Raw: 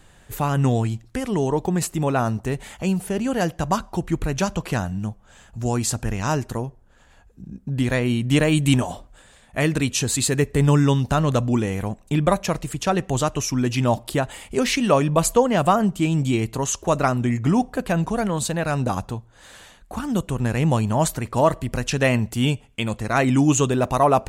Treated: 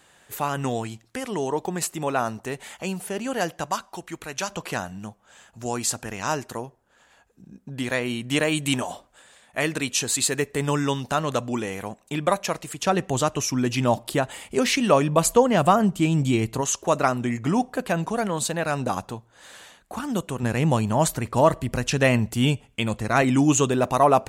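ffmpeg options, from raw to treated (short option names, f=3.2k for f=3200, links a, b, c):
-af "asetnsamples=n=441:p=0,asendcmd='3.66 highpass f 1200;4.5 highpass f 490;12.83 highpass f 160;15.25 highpass f 67;16.61 highpass f 270;20.43 highpass f 120;21.07 highpass f 56;23.22 highpass f 160',highpass=f=500:p=1"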